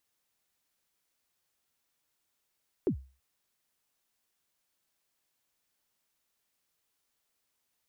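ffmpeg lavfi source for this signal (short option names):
-f lavfi -i "aevalsrc='0.0891*pow(10,-3*t/0.35)*sin(2*PI*(440*0.091/log(66/440)*(exp(log(66/440)*min(t,0.091)/0.091)-1)+66*max(t-0.091,0)))':d=0.33:s=44100"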